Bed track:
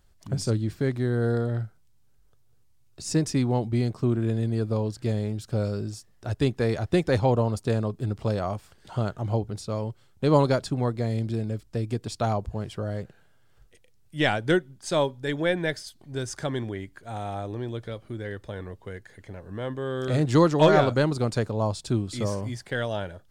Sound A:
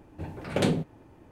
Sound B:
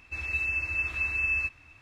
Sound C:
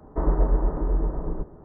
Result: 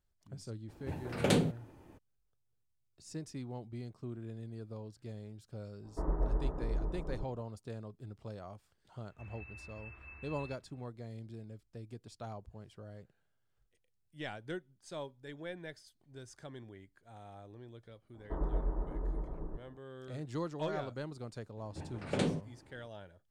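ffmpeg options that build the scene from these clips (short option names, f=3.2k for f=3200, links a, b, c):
-filter_complex "[1:a]asplit=2[a][b];[3:a]asplit=2[c][d];[0:a]volume=-19dB[e];[a]highshelf=f=4.6k:g=5.5[f];[2:a]lowpass=1.5k[g];[b]aresample=22050,aresample=44100[h];[f]atrim=end=1.31,asetpts=PTS-STARTPTS,volume=-3.5dB,afade=t=in:d=0.02,afade=t=out:st=1.29:d=0.02,adelay=680[i];[c]atrim=end=1.64,asetpts=PTS-STARTPTS,volume=-11.5dB,afade=t=in:d=0.05,afade=t=out:st=1.59:d=0.05,adelay=256221S[j];[g]atrim=end=1.81,asetpts=PTS-STARTPTS,volume=-13.5dB,afade=t=in:d=0.004:c=hsin,afade=t=out:st=1.806:d=0.004:c=hsin,adelay=9070[k];[d]atrim=end=1.64,asetpts=PTS-STARTPTS,volume=-13dB,afade=t=in:d=0.004:c=hsin,afade=t=out:st=1.636:d=0.004:c=hsin,adelay=18140[l];[h]atrim=end=1.31,asetpts=PTS-STARTPTS,volume=-7.5dB,afade=t=in:d=0.004:c=hsin,afade=t=out:st=1.306:d=0.004:c=hsin,adelay=21570[m];[e][i][j][k][l][m]amix=inputs=6:normalize=0"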